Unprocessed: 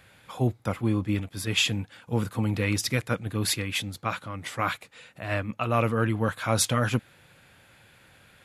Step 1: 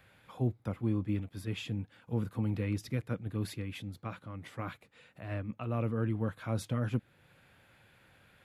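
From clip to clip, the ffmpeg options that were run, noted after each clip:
-filter_complex "[0:a]acrossover=split=460[a][b];[b]acompressor=threshold=-53dB:ratio=1.5[c];[a][c]amix=inputs=2:normalize=0,equalizer=f=7.5k:t=o:w=1.7:g=-7,volume=-5.5dB"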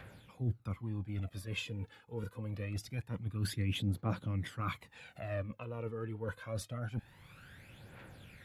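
-af "areverse,acompressor=threshold=-40dB:ratio=10,areverse,aphaser=in_gain=1:out_gain=1:delay=2.4:decay=0.63:speed=0.25:type=triangular,volume=4dB"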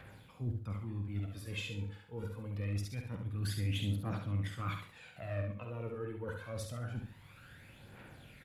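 -filter_complex "[0:a]asoftclip=type=tanh:threshold=-25dB,asplit=2[a][b];[b]adelay=49,volume=-9.5dB[c];[a][c]amix=inputs=2:normalize=0,aecho=1:1:69|138|207|276:0.531|0.159|0.0478|0.0143,volume=-2dB"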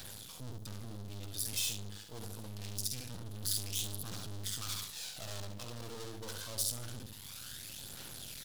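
-af "aeval=exprs='(tanh(112*val(0)+0.65)-tanh(0.65))/112':c=same,aeval=exprs='max(val(0),0)':c=same,aexciter=amount=8.6:drive=3.4:freq=3.3k,volume=11dB"

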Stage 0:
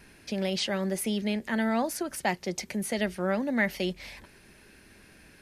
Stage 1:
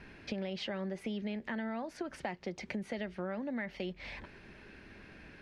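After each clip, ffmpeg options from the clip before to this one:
-filter_complex "[0:a]asplit=2[a][b];[b]alimiter=limit=-20.5dB:level=0:latency=1,volume=-3dB[c];[a][c]amix=inputs=2:normalize=0,lowpass=3.1k,acompressor=threshold=-33dB:ratio=6,volume=-2.5dB"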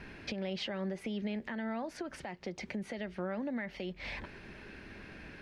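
-af "alimiter=level_in=8dB:limit=-24dB:level=0:latency=1:release=272,volume=-8dB,volume=4dB"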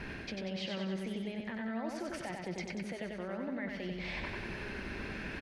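-af "areverse,acompressor=threshold=-46dB:ratio=6,areverse,aecho=1:1:94|188|282|376|470|564|658|752:0.668|0.388|0.225|0.13|0.0756|0.0439|0.0254|0.0148,volume=7.5dB"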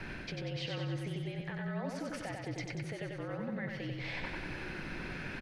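-af "afreqshift=-49"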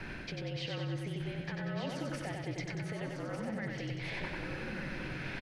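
-af "aecho=1:1:1199:0.473"

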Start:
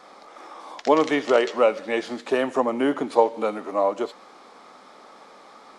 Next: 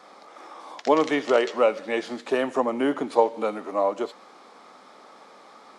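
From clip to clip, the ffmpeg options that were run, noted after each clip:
-af "highpass=86,volume=-1.5dB"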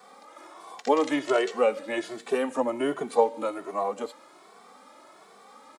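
-filter_complex "[0:a]acrossover=split=770|4500[a][b][c];[c]aexciter=amount=1.5:drive=9.3:freq=7.3k[d];[a][b][d]amix=inputs=3:normalize=0,asplit=2[e][f];[f]adelay=2.2,afreqshift=1.3[g];[e][g]amix=inputs=2:normalize=1"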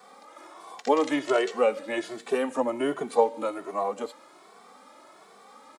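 -af anull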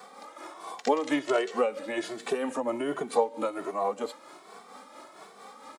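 -af "acompressor=threshold=-32dB:ratio=2,tremolo=f=4.4:d=0.5,volume=5.5dB"

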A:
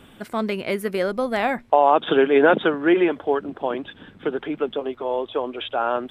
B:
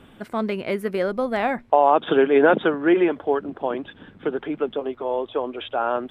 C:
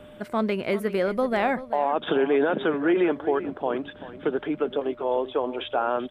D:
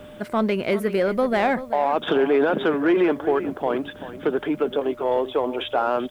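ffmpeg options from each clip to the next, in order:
-af "highshelf=f=3.3k:g=-8"
-af "alimiter=limit=-14dB:level=0:latency=1:release=75,aeval=exprs='val(0)+0.00501*sin(2*PI*600*n/s)':c=same,aecho=1:1:386:0.188"
-filter_complex "[0:a]asplit=2[a][b];[b]asoftclip=type=tanh:threshold=-22.5dB,volume=-3.5dB[c];[a][c]amix=inputs=2:normalize=0,acrusher=bits=9:mix=0:aa=0.000001"

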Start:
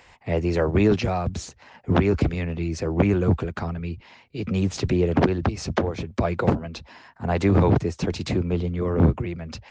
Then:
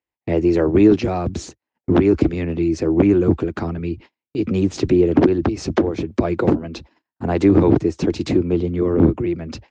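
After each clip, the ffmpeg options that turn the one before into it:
-filter_complex "[0:a]agate=range=-42dB:threshold=-42dB:ratio=16:detection=peak,equalizer=f=320:t=o:w=0.75:g=13,asplit=2[a][b];[b]acompressor=threshold=-21dB:ratio=6,volume=-2dB[c];[a][c]amix=inputs=2:normalize=0,volume=-3dB"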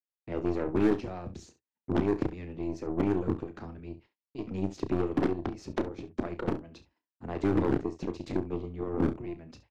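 -filter_complex "[0:a]aeval=exprs='0.891*(cos(1*acos(clip(val(0)/0.891,-1,1)))-cos(1*PI/2))+0.224*(cos(3*acos(clip(val(0)/0.891,-1,1)))-cos(3*PI/2))+0.0501*(cos(4*acos(clip(val(0)/0.891,-1,1)))-cos(4*PI/2))+0.0282*(cos(5*acos(clip(val(0)/0.891,-1,1)))-cos(5*PI/2))+0.0224*(cos(7*acos(clip(val(0)/0.891,-1,1)))-cos(7*PI/2))':c=same,asoftclip=type=hard:threshold=-11dB,asplit=2[a][b];[b]aecho=0:1:32|68:0.299|0.178[c];[a][c]amix=inputs=2:normalize=0,volume=-6.5dB"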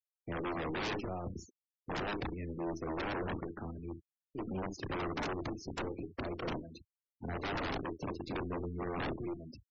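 -af "aeval=exprs='0.0266*(abs(mod(val(0)/0.0266+3,4)-2)-1)':c=same,equalizer=f=6.1k:t=o:w=1.1:g=4.5,afftfilt=real='re*gte(hypot(re,im),0.00708)':imag='im*gte(hypot(re,im),0.00708)':win_size=1024:overlap=0.75"

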